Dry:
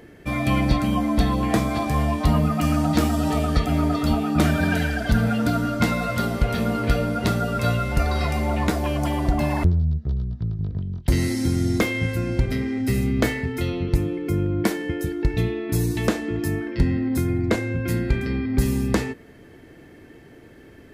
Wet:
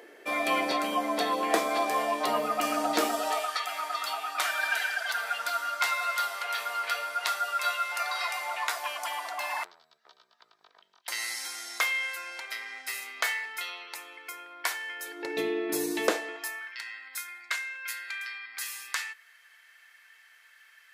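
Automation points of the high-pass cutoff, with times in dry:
high-pass 24 dB/octave
3.11 s 400 Hz
3.53 s 900 Hz
14.95 s 900 Hz
15.38 s 340 Hz
16.01 s 340 Hz
16.73 s 1.3 kHz

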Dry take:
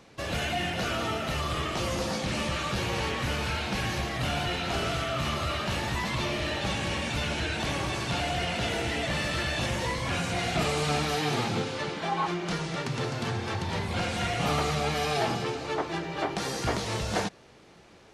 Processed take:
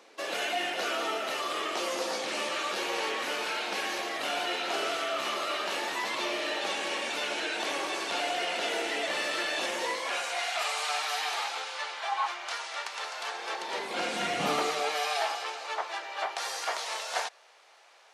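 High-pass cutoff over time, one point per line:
high-pass 24 dB/octave
9.87 s 340 Hz
10.50 s 710 Hz
13.15 s 710 Hz
14.40 s 190 Hz
15.14 s 640 Hz

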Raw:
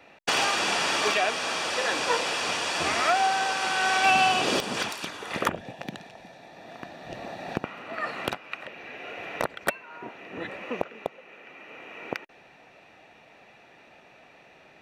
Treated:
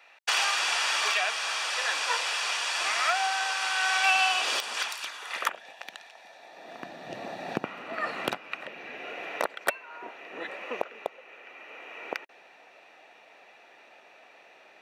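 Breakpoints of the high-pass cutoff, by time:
6.08 s 1 kHz
6.51 s 500 Hz
6.88 s 160 Hz
8.96 s 160 Hz
9.51 s 430 Hz

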